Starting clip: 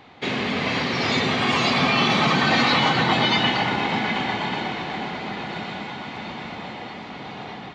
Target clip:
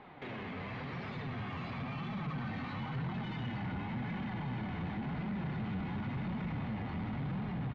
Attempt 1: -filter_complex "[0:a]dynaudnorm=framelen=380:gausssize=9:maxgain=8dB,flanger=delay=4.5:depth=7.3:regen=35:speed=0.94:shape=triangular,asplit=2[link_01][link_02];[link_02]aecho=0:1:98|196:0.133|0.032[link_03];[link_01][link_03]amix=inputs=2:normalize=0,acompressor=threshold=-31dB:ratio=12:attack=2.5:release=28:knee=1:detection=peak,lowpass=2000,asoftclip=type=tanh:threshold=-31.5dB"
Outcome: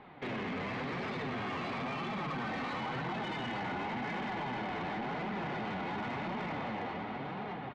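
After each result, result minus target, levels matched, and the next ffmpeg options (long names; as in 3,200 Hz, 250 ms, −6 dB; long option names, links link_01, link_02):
125 Hz band −8.0 dB; downward compressor: peak gain reduction −6.5 dB
-filter_complex "[0:a]dynaudnorm=framelen=380:gausssize=9:maxgain=8dB,flanger=delay=4.5:depth=7.3:regen=35:speed=0.94:shape=triangular,asplit=2[link_01][link_02];[link_02]aecho=0:1:98|196:0.133|0.032[link_03];[link_01][link_03]amix=inputs=2:normalize=0,acompressor=threshold=-31dB:ratio=12:attack=2.5:release=28:knee=1:detection=peak,lowpass=2000,asubboost=boost=11:cutoff=150,asoftclip=type=tanh:threshold=-31.5dB"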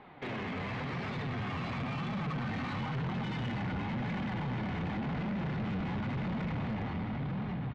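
downward compressor: peak gain reduction −6.5 dB
-filter_complex "[0:a]dynaudnorm=framelen=380:gausssize=9:maxgain=8dB,flanger=delay=4.5:depth=7.3:regen=35:speed=0.94:shape=triangular,asplit=2[link_01][link_02];[link_02]aecho=0:1:98|196:0.133|0.032[link_03];[link_01][link_03]amix=inputs=2:normalize=0,acompressor=threshold=-38dB:ratio=12:attack=2.5:release=28:knee=1:detection=peak,lowpass=2000,asubboost=boost=11:cutoff=150,asoftclip=type=tanh:threshold=-31.5dB"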